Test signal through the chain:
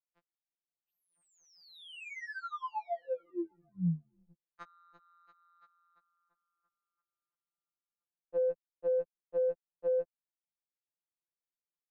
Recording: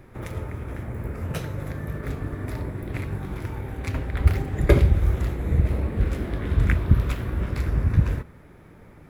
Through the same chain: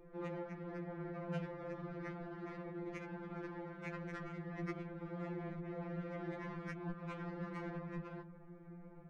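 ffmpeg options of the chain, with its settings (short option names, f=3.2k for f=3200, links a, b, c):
-filter_complex "[0:a]bass=f=250:g=-1,treble=f=4k:g=-8,alimiter=limit=-15dB:level=0:latency=1:release=273,acrossover=split=170|590[a][b][c];[a]acompressor=threshold=-32dB:ratio=4[d];[b]acompressor=threshold=-40dB:ratio=4[e];[c]acompressor=threshold=-36dB:ratio=4[f];[d][e][f]amix=inputs=3:normalize=0,highshelf=f=4.3k:g=-2,adynamicsmooth=sensitivity=3.5:basefreq=1.3k,afftfilt=real='re*2.83*eq(mod(b,8),0)':imag='im*2.83*eq(mod(b,8),0)':win_size=2048:overlap=0.75,volume=-3dB"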